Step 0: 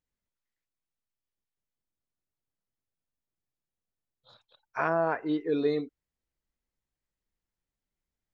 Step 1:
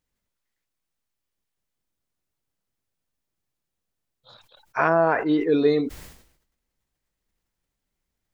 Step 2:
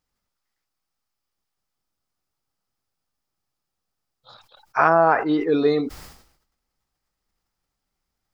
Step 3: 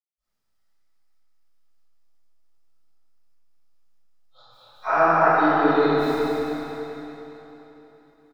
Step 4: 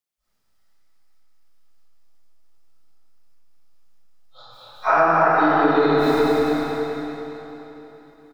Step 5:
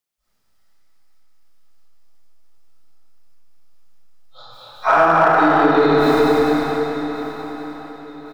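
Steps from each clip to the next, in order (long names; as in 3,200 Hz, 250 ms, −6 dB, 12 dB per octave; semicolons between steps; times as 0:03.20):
level that may fall only so fast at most 80 dB per second; level +7.5 dB
thirty-one-band graphic EQ 800 Hz +7 dB, 1,250 Hz +8 dB, 5,000 Hz +7 dB
gate pattern ".xxxxx.xxx" 139 BPM; repeating echo 206 ms, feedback 48%, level −7 dB; convolution reverb RT60 3.6 s, pre-delay 55 ms; level +8.5 dB
downward compressor 5 to 1, threshold −21 dBFS, peak gain reduction 8 dB; level +7.5 dB
in parallel at −5.5 dB: hard clipping −14 dBFS, distortion −14 dB; on the sum: repeating echo 1,126 ms, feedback 36%, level −16 dB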